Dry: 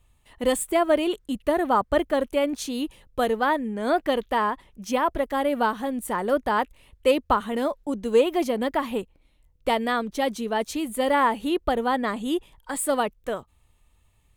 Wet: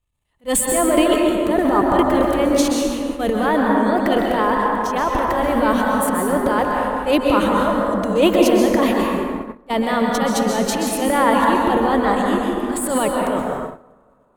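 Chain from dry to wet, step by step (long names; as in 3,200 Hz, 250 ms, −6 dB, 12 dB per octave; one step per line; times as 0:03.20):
transient designer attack −10 dB, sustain +10 dB
dense smooth reverb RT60 2.8 s, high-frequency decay 0.35×, pre-delay 115 ms, DRR −1.5 dB
noise gate −28 dBFS, range −19 dB
level +3.5 dB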